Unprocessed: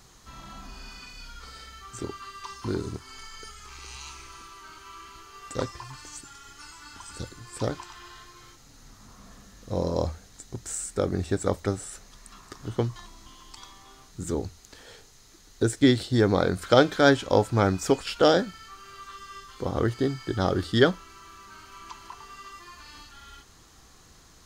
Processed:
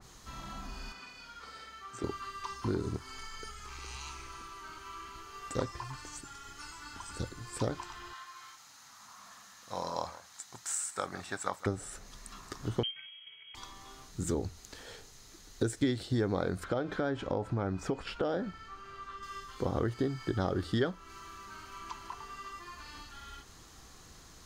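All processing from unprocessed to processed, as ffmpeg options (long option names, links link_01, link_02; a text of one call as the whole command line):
ffmpeg -i in.wav -filter_complex "[0:a]asettb=1/sr,asplit=3[link_01][link_02][link_03];[link_01]atrim=end=0.924[link_04];[link_02]atrim=start=0.92:end=2.04,asetpts=PTS-STARTPTS,afade=type=in:duration=0.004:curve=qsin,afade=type=out:start_time=1.116:duration=0.004:curve=qsin,highpass=frequency=350:poles=1,highshelf=frequency=4400:gain=-8[link_05];[link_03]atrim=start=2.036[link_06];[link_04][link_05]acrossfade=duration=0.004:curve1=hsin:curve2=qsin[link_07];[link_07][link_06]acrossfade=duration=0.004:curve1=qsin:curve2=hsin,asettb=1/sr,asplit=3[link_08][link_09][link_10];[link_08]atrim=end=8.134[link_11];[link_09]atrim=start=8.13:end=11.66,asetpts=PTS-STARTPTS,afade=type=in:duration=0.004:curve=qsin,afade=type=out:start_time=3.526:duration=0.004:curve=qsin,highpass=140,lowshelf=frequency=630:width_type=q:width=1.5:gain=-13.5,aecho=1:1:159:0.133,atrim=end_sample=155673[link_12];[link_10]atrim=start=11.656[link_13];[link_11][link_12]acrossfade=duration=0.004:curve1=hsin:curve2=qsin[link_14];[link_14][link_13]acrossfade=duration=0.004:curve1=qsin:curve2=hsin,asettb=1/sr,asplit=3[link_15][link_16][link_17];[link_15]atrim=end=12.834[link_18];[link_16]atrim=start=12.83:end=13.55,asetpts=PTS-STARTPTS,afade=type=in:duration=0.004:curve=qsin,afade=type=out:start_time=0.716:duration=0.004:curve=qsin,adynamicsmooth=sensitivity=7:basefreq=960,lowpass=frequency=2800:width_type=q:width=0.5098,lowpass=frequency=2800:width_type=q:width=0.6013,lowpass=frequency=2800:width_type=q:width=0.9,lowpass=frequency=2800:width_type=q:width=2.563,afreqshift=-3300[link_19];[link_17]atrim=start=13.546[link_20];[link_18][link_19]acrossfade=duration=0.004:curve1=hsin:curve2=qsin[link_21];[link_21][link_20]acrossfade=duration=0.004:curve1=qsin:curve2=hsin,asettb=1/sr,asplit=3[link_22][link_23][link_24];[link_22]atrim=end=16.644[link_25];[link_23]atrim=start=16.64:end=19.23,asetpts=PTS-STARTPTS,afade=type=in:duration=0.004:curve=qsin,afade=type=out:start_time=2.586:duration=0.004:curve=qsin,lowpass=frequency=2000:poles=1,acompressor=threshold=-27dB:ratio=3:attack=3.2:release=140:knee=1:detection=peak[link_26];[link_24]atrim=start=19.226[link_27];[link_25][link_26]acrossfade=duration=0.004:curve1=hsin:curve2=qsin[link_28];[link_28][link_27]acrossfade=duration=0.004:curve1=qsin:curve2=hsin,acompressor=threshold=-28dB:ratio=4,adynamicequalizer=threshold=0.00282:dfrequency=2400:dqfactor=0.7:tfrequency=2400:tqfactor=0.7:attack=5:release=100:ratio=0.375:range=2.5:mode=cutabove:tftype=highshelf" out.wav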